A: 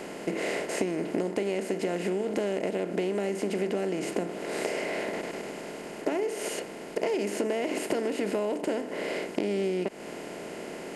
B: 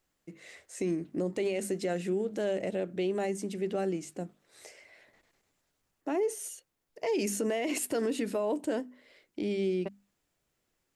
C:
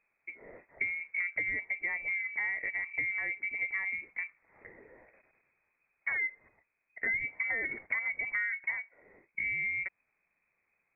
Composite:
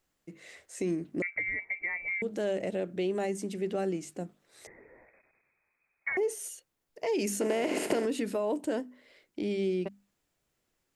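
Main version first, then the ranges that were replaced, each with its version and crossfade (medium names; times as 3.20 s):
B
1.22–2.22 s: from C
4.67–6.17 s: from C
7.41–8.05 s: from A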